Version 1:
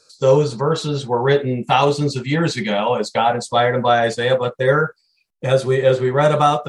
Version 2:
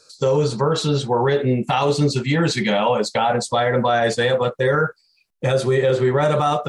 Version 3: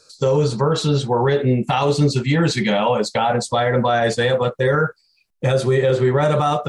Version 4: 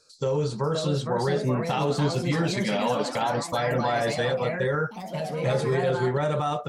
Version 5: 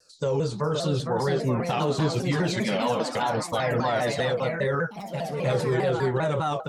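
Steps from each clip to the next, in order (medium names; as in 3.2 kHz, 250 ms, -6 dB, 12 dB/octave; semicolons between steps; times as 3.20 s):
peak limiter -12 dBFS, peak gain reduction 10 dB; trim +2.5 dB
bass shelf 150 Hz +5 dB
ever faster or slower copies 559 ms, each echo +3 st, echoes 3, each echo -6 dB; trim -8.5 dB
vibrato with a chosen wave saw down 5 Hz, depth 160 cents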